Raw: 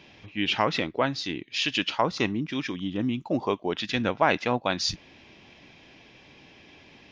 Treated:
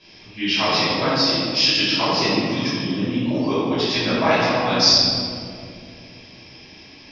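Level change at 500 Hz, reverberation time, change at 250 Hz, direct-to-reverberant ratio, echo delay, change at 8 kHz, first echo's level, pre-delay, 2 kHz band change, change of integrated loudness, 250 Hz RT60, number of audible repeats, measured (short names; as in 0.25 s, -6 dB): +6.0 dB, 2.4 s, +7.0 dB, -11.5 dB, none, n/a, none, 5 ms, +6.0 dB, +8.5 dB, 3.5 s, none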